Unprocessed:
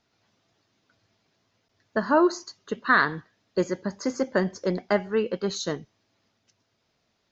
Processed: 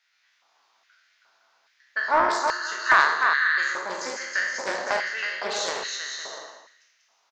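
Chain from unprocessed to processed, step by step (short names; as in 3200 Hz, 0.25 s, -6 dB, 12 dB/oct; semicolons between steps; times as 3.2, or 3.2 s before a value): spectral trails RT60 0.93 s; dynamic EQ 970 Hz, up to -6 dB, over -31 dBFS, Q 0.88; bouncing-ball echo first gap 0.32 s, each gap 0.6×, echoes 5; LFO high-pass square 1.2 Hz 900–1800 Hz; Doppler distortion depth 0.17 ms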